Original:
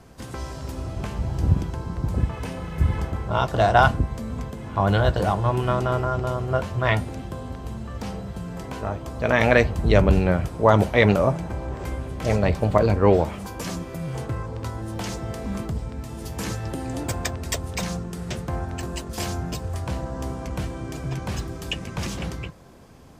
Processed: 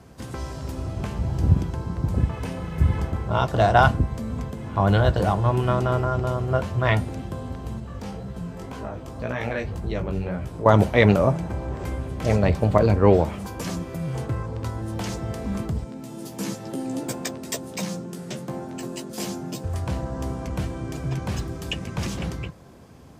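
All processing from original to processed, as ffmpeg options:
-filter_complex "[0:a]asettb=1/sr,asplit=3[a][b][c];[a]atrim=end=7.804[d];[b]atrim=start=7.8:end=10.66,asetpts=PTS-STARTPTS,afade=t=in:d=0.004:c=qsin,afade=t=out:st=2.856:d=0.004:c=qsin,acompressor=threshold=-26dB:ratio=2:attack=3.2:release=140:knee=1:detection=peak,flanger=delay=15:depth=5.8:speed=1.9,asplit=2[e][f];[f]adelay=23,volume=-14dB[g];[e][g]amix=inputs=2:normalize=0,atrim=end_sample=126126[h];[c]atrim=start=10.656[i];[d][h]acrossfade=d=0.004:c1=hsin:c2=qsin[j];[j][i]acrossfade=d=0.004:c1=qsin:c2=hsin,asettb=1/sr,asplit=3[k][l][m];[k]atrim=end=15.844[n];[l]atrim=start=15.84:end=19.64,asetpts=PTS-STARTPTS,afade=t=in:d=0.004:c=qsin,afade=t=out:st=3.796:d=0.004:c=qsin,highpass=f=160:w=0.5412,highpass=f=160:w=1.3066,equalizer=f=1.5k:t=o:w=2.7:g=-5,asplit=2[o][p];[p]adelay=15,volume=-5.5dB[q];[o][q]amix=inputs=2:normalize=0,atrim=end_sample=167580[r];[m]atrim=start=19.636[s];[n][r]acrossfade=d=0.004:c1=hsin:c2=qsin[t];[t][s]acrossfade=d=0.004:c1=qsin:c2=hsin,highpass=56,lowshelf=f=390:g=3.5,volume=-1dB"

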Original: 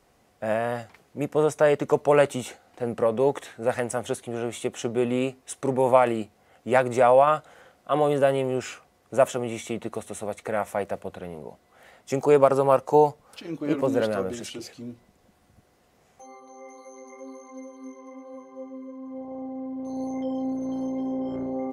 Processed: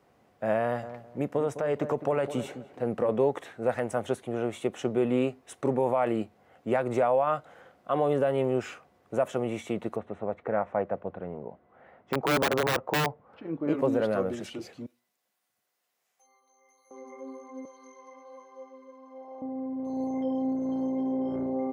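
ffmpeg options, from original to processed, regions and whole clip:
-filter_complex "[0:a]asettb=1/sr,asplit=3[a][b][c];[a]atrim=end=0.624[d];[b]atrim=start=0.62:end=3.09,asetpts=PTS-STARTPTS,afade=t=in:d=0.004:c=qsin,afade=t=out:st=2.466:d=0.004:c=qsin,acompressor=threshold=-21dB:ratio=6:attack=3.2:release=140:knee=1:detection=peak,asplit=2[e][f];[f]adelay=208,lowpass=f=960:p=1,volume=-10.5dB,asplit=2[g][h];[h]adelay=208,lowpass=f=960:p=1,volume=0.31,asplit=2[i][j];[j]adelay=208,lowpass=f=960:p=1,volume=0.31[k];[e][g][i][k]amix=inputs=4:normalize=0,atrim=end_sample=108927[l];[c]atrim=start=3.086[m];[d][l]acrossfade=d=0.004:c1=hsin:c2=qsin[n];[n][m]acrossfade=d=0.004:c1=qsin:c2=hsin,asettb=1/sr,asplit=3[o][p][q];[o]atrim=end=9.964[r];[p]atrim=start=9.96:end=13.68,asetpts=PTS-STARTPTS,afade=t=in:d=0.004:c=qsin,afade=t=out:st=3.716:d=0.004:c=qsin,lowpass=1.7k,aeval=exprs='(mod(5.01*val(0)+1,2)-1)/5.01':c=same[s];[q]atrim=start=13.676[t];[r][s]acrossfade=d=0.004:c1=hsin:c2=qsin[u];[u][t]acrossfade=d=0.004:c1=qsin:c2=hsin,asettb=1/sr,asplit=3[v][w][x];[v]atrim=end=14.864[y];[w]atrim=start=14.86:end=16.91,asetpts=PTS-STARTPTS,afade=t=in:d=0.004:c=qsin,afade=t=out:st=2.046:d=0.004:c=qsin,aderivative,bandreject=f=60:t=h:w=6,bandreject=f=120:t=h:w=6,bandreject=f=180:t=h:w=6,bandreject=f=240:t=h:w=6,bandreject=f=300:t=h:w=6,bandreject=f=360:t=h:w=6,bandreject=f=420:t=h:w=6,bandreject=f=480:t=h:w=6[z];[x]atrim=start=16.906[aa];[y][z]acrossfade=d=0.004:c1=hsin:c2=qsin[ab];[ab][aa]acrossfade=d=0.004:c1=qsin:c2=hsin,asettb=1/sr,asplit=3[ac][ad][ae];[ac]atrim=end=17.654[af];[ad]atrim=start=17.65:end=19.42,asetpts=PTS-STARTPTS,afade=t=in:d=0.004:c=qsin,afade=t=out:st=1.766:d=0.004:c=qsin,highpass=640,equalizer=f=5k:w=1:g=10.5[ag];[ae]atrim=start=19.416[ah];[af][ag]acrossfade=d=0.004:c1=hsin:c2=qsin[ai];[ai][ah]acrossfade=d=0.004:c1=qsin:c2=hsin,highpass=83,alimiter=limit=-15dB:level=0:latency=1:release=141,equalizer=f=9k:t=o:w=2.5:g=-11"

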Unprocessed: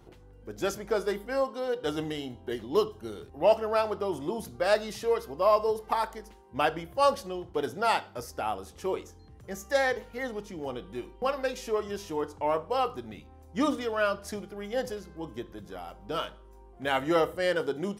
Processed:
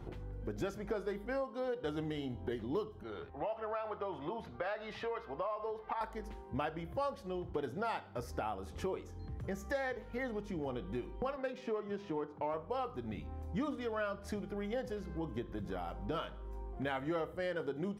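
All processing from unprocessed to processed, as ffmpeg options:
-filter_complex "[0:a]asettb=1/sr,asplit=3[a][b][c];[a]atrim=end=3.034[d];[b]atrim=start=3.03:end=6.01,asetpts=PTS-STARTPTS,afade=t=in:d=0.004:c=qsin,afade=t=out:st=2.976:d=0.004:c=qsin,acrossover=split=560 3800:gain=0.224 1 0.0631[e][f][g];[e][f][g]amix=inputs=3:normalize=0,acompressor=threshold=-30dB:ratio=2.5:attack=3.2:release=140:knee=1:detection=peak,asplit=2[h][i];[i]adelay=12,volume=-14dB[j];[h][j]amix=inputs=2:normalize=0,atrim=end_sample=131418[k];[c]atrim=start=6.006[l];[d][k]acrossfade=d=0.004:c1=hsin:c2=qsin[m];[m][l]acrossfade=d=0.004:c1=qsin:c2=hsin,asettb=1/sr,asplit=3[n][o][p];[n]atrim=end=11.364[q];[o]atrim=start=11.36:end=12.54,asetpts=PTS-STARTPTS,afade=t=in:d=0.004:c=qsin,afade=t=out:st=1.176:d=0.004:c=qsin,highpass=f=130:w=0.5412,highpass=f=130:w=1.3066,adynamicsmooth=sensitivity=8:basefreq=2.9k[r];[p]atrim=start=12.536[s];[q][r]acrossfade=d=0.004:c1=hsin:c2=qsin[t];[t][s]acrossfade=d=0.004:c1=qsin:c2=hsin,bass=f=250:g=5,treble=f=4k:g=-10,bandreject=f=2.8k:w=26,acompressor=threshold=-42dB:ratio=4,volume=4.5dB"

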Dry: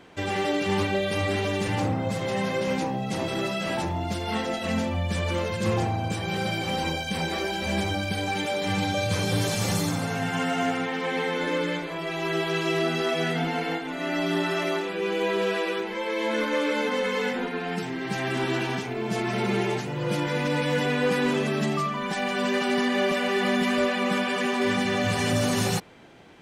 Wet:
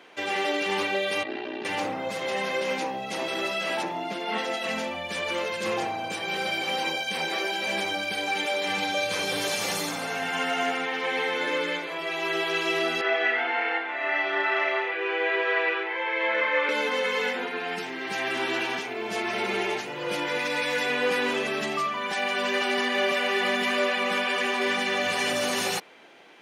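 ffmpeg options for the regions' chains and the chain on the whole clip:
-filter_complex "[0:a]asettb=1/sr,asplit=3[a][b][c];[a]atrim=end=1.234[d];[b]atrim=start=1.23:end=1.65,asetpts=PTS-STARTPTS,afade=t=in:d=0.004:c=qsin,afade=t=out:st=0.416:d=0.004:c=qsin,aeval=exprs='val(0)*sin(2*PI*30*n/s)':c=same,highpass=f=150:w=0.5412,highpass=f=150:w=1.3066,equalizer=f=170:t=q:w=4:g=-8,equalizer=f=300:t=q:w=4:g=8,equalizer=f=540:t=q:w=4:g=-10,equalizer=f=1.2k:t=q:w=4:g=-9,equalizer=f=2.2k:t=q:w=4:g=-10,equalizer=f=3.3k:t=q:w=4:g=-7,lowpass=f=3.5k:w=0.5412,lowpass=f=3.5k:w=1.3066[e];[c]atrim=start=1.646[f];[d][e]acrossfade=d=0.004:c1=hsin:c2=qsin[g];[g][f]acrossfade=d=0.004:c1=qsin:c2=hsin,asettb=1/sr,asplit=3[h][i][j];[h]atrim=end=3.834[k];[i]atrim=start=3.83:end=4.38,asetpts=PTS-STARTPTS,afade=t=in:d=0.004:c=qsin,afade=t=out:st=0.546:d=0.004:c=qsin,acrossover=split=3600[l][m];[m]acompressor=threshold=-50dB:ratio=4:attack=1:release=60[n];[l][n]amix=inputs=2:normalize=0,highpass=f=140:w=0.5412,highpass=f=140:w=1.3066,lowshelf=f=340:g=5[o];[j]atrim=start=4.376[p];[k][o]acrossfade=d=0.004:c1=hsin:c2=qsin[q];[q][p]acrossfade=d=0.004:c1=qsin:c2=hsin,asettb=1/sr,asplit=3[r][s][t];[r]atrim=end=13.014[u];[s]atrim=start=13.01:end=16.69,asetpts=PTS-STARTPTS,afade=t=in:d=0.004:c=qsin,afade=t=out:st=3.676:d=0.004:c=qsin,highpass=460,lowpass=2.4k,equalizer=f=1.9k:w=2.6:g=6,asplit=2[v][w];[w]adelay=33,volume=-2.5dB[x];[v][x]amix=inputs=2:normalize=0,atrim=end_sample=162288[y];[t]atrim=start=16.686[z];[u][y]acrossfade=d=0.004:c1=hsin:c2=qsin[aa];[aa][z]acrossfade=d=0.004:c1=qsin:c2=hsin,asettb=1/sr,asplit=3[ab][ac][ad];[ab]atrim=end=20.394[ae];[ac]atrim=start=20.39:end=20.9,asetpts=PTS-STARTPTS,afade=t=in:d=0.004:c=qsin,afade=t=out:st=0.506:d=0.004:c=qsin,tiltshelf=f=1.4k:g=-3,bandreject=f=3k:w=12[af];[ad]atrim=start=20.896[ag];[ae][af]acrossfade=d=0.004:c1=hsin:c2=qsin[ah];[ah][ag]acrossfade=d=0.004:c1=qsin:c2=hsin,highpass=380,equalizer=f=2.5k:w=1.3:g=4,bandreject=f=7.7k:w=11"

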